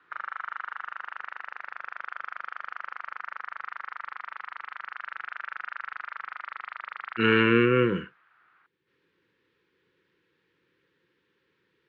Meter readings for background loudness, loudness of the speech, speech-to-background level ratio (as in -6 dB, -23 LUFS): -38.0 LUFS, -22.5 LUFS, 15.5 dB